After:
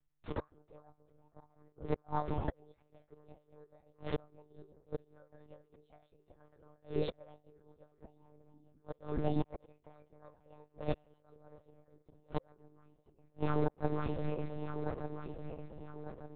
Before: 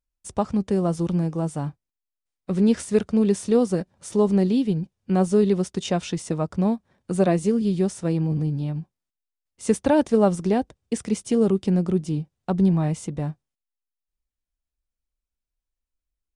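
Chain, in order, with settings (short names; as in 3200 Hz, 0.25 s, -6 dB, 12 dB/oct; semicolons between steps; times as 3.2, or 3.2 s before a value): regenerating reverse delay 0.598 s, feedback 63%, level -11 dB; metallic resonator 130 Hz, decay 0.23 s, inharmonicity 0.002; formant shift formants +5 st; flipped gate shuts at -34 dBFS, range -41 dB; monotone LPC vocoder at 8 kHz 150 Hz; mismatched tape noise reduction decoder only; gain +15 dB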